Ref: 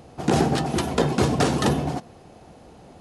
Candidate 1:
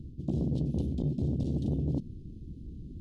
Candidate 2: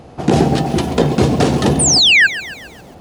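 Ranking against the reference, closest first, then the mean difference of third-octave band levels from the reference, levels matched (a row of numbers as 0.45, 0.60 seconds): 2, 1; 5.5, 13.5 decibels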